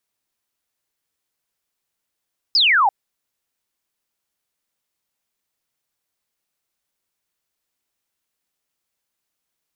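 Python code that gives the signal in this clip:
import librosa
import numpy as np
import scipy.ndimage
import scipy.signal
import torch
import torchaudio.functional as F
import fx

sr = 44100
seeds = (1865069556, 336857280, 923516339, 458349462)

y = fx.laser_zap(sr, level_db=-12.0, start_hz=5300.0, end_hz=750.0, length_s=0.34, wave='sine')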